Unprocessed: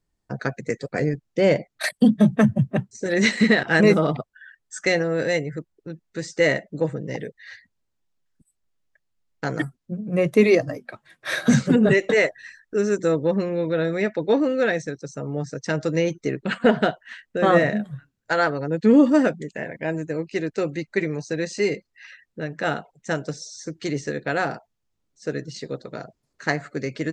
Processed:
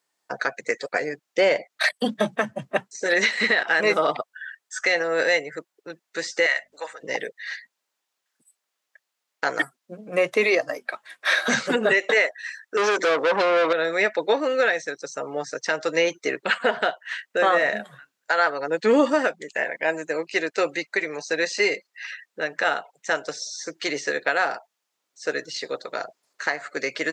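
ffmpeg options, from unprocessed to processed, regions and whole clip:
ffmpeg -i in.wav -filter_complex "[0:a]asettb=1/sr,asplit=3[link_01][link_02][link_03];[link_01]atrim=end=6.464[link_04];[link_02]atrim=start=6.46:end=7.03,asetpts=PTS-STARTPTS,afade=type=in:duration=0.004:curve=qsin,afade=type=out:start_time=0.566:duration=0.004:curve=qsin,highpass=1100,aeval=exprs='val(0)+0.002*(sin(2*PI*50*n/s)+sin(2*PI*2*50*n/s)/2+sin(2*PI*3*50*n/s)/3+sin(2*PI*4*50*n/s)/4+sin(2*PI*5*50*n/s)/5)':channel_layout=same[link_05];[link_03]atrim=start=7.026[link_06];[link_04][link_05]acrossfade=duration=0.004:curve1=hsin:curve2=qsin[link_07];[link_07][link_06]acrossfade=duration=0.004:curve1=qsin:curve2=hsin,asettb=1/sr,asplit=3[link_08][link_09][link_10];[link_08]atrim=end=12.774[link_11];[link_09]atrim=start=12.77:end=13.73,asetpts=PTS-STARTPTS,afade=type=in:duration=0.004:curve=qsin,afade=type=out:start_time=0.956:duration=0.004:curve=qsin,highshelf=frequency=7200:gain=-9.5,asplit=2[link_12][link_13];[link_13]highpass=frequency=720:poles=1,volume=26dB,asoftclip=type=tanh:threshold=-9.5dB[link_14];[link_12][link_14]amix=inputs=2:normalize=0,lowpass=frequency=5300:poles=1,volume=-6dB[link_15];[link_10]atrim=start=13.726[link_16];[link_11][link_15]acrossfade=duration=0.004:curve1=hsin:curve2=qsin[link_17];[link_17][link_16]acrossfade=duration=0.004:curve1=qsin:curve2=hsin,acrossover=split=5600[link_18][link_19];[link_19]acompressor=threshold=-52dB:ratio=4:attack=1:release=60[link_20];[link_18][link_20]amix=inputs=2:normalize=0,highpass=690,alimiter=limit=-19dB:level=0:latency=1:release=296,volume=9dB" out.wav

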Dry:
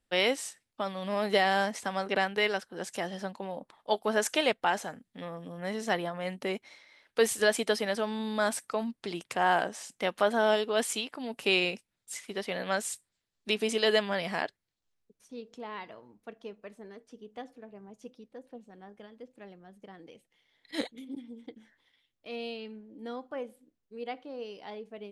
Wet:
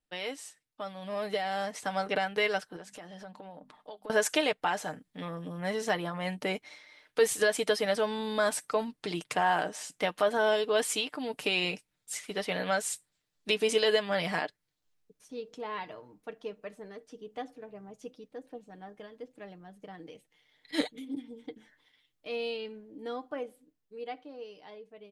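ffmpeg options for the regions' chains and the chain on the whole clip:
ffmpeg -i in.wav -filter_complex "[0:a]asettb=1/sr,asplit=3[link_01][link_02][link_03];[link_01]atrim=end=2.764[link_04];[link_02]atrim=start=2.76:end=4.1,asetpts=PTS-STARTPTS,afade=type=in:duration=0.004:curve=qsin,afade=type=out:start_time=1.336:duration=0.004:curve=qsin,bandreject=frequency=50:width_type=h:width=6,bandreject=frequency=100:width_type=h:width=6,bandreject=frequency=150:width_type=h:width=6,bandreject=frequency=200:width_type=h:width=6,bandreject=frequency=250:width_type=h:width=6,acompressor=threshold=-45dB:ratio=5:attack=3.2:release=140:knee=1:detection=peak,highshelf=frequency=4600:gain=-6[link_05];[link_03]atrim=start=4.096[link_06];[link_04][link_05]acrossfade=duration=0.004:curve1=hsin:curve2=qsin[link_07];[link_07][link_06]acrossfade=duration=0.004:curve1=qsin:curve2=hsin,alimiter=limit=-18dB:level=0:latency=1:release=224,aecho=1:1:6.6:0.49,dynaudnorm=framelen=400:gausssize=9:maxgain=10dB,volume=-8dB" out.wav

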